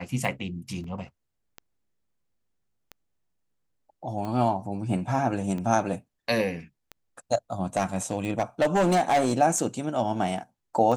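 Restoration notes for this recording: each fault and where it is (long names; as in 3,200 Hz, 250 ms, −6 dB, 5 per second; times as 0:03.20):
scratch tick 45 rpm
0:00.84: drop-out 3 ms
0:07.77–0:09.33: clipping −17.5 dBFS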